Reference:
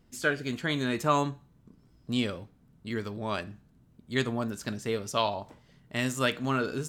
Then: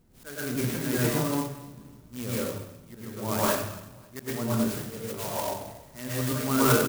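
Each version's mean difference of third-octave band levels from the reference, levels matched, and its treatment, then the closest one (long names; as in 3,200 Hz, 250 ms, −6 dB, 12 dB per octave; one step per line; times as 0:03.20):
13.0 dB: volume swells 339 ms
on a send: repeating echo 274 ms, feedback 45%, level −23 dB
on the sum: dense smooth reverb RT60 0.76 s, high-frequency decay 1×, pre-delay 95 ms, DRR −8 dB
converter with an unsteady clock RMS 0.089 ms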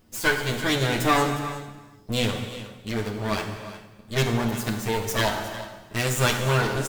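9.5 dB: lower of the sound and its delayed copy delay 9.4 ms
high-shelf EQ 9,400 Hz +9.5 dB
on a send: single-tap delay 358 ms −15.5 dB
on the sum: reverb whose tail is shaped and stops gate 480 ms falling, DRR 4.5 dB
level +5.5 dB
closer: second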